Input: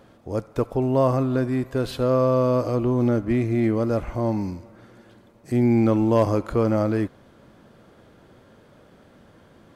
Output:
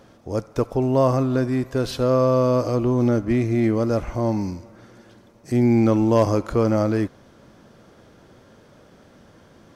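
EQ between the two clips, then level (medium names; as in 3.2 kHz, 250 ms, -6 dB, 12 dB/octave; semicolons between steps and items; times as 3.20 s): peaking EQ 5.7 kHz +8 dB 0.49 oct; +1.5 dB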